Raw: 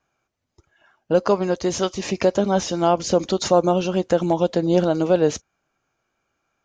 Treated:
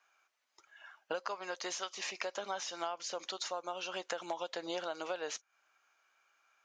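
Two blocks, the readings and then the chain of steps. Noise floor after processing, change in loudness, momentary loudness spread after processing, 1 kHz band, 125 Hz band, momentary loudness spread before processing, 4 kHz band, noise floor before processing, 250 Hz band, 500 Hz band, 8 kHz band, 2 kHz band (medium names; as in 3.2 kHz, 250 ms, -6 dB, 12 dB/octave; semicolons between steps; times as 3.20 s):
-81 dBFS, -19.0 dB, 3 LU, -16.0 dB, -38.0 dB, 4 LU, -9.5 dB, -77 dBFS, -28.0 dB, -22.0 dB, -11.5 dB, -8.0 dB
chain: high-pass 1.2 kHz 12 dB/octave; compression 12:1, threshold -40 dBFS, peak gain reduction 19 dB; treble shelf 4.1 kHz -6.5 dB; trim +6 dB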